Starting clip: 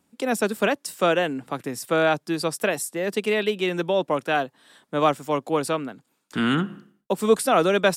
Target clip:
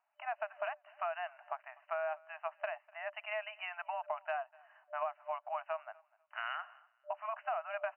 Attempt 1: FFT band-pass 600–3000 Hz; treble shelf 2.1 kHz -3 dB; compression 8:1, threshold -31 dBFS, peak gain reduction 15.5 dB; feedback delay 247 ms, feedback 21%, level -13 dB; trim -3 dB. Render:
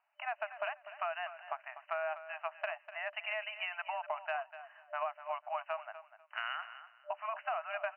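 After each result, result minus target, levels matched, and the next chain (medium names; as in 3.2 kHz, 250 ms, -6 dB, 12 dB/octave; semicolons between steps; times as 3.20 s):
echo-to-direct +12 dB; 4 kHz band +4.0 dB
FFT band-pass 600–3000 Hz; treble shelf 2.1 kHz -3 dB; compression 8:1, threshold -31 dBFS, peak gain reduction 15.5 dB; feedback delay 247 ms, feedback 21%, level -25 dB; trim -3 dB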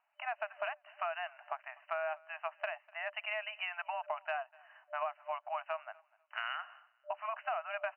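4 kHz band +4.0 dB
FFT band-pass 600–3000 Hz; treble shelf 2.1 kHz -14.5 dB; compression 8:1, threshold -31 dBFS, peak gain reduction 14 dB; feedback delay 247 ms, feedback 21%, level -25 dB; trim -3 dB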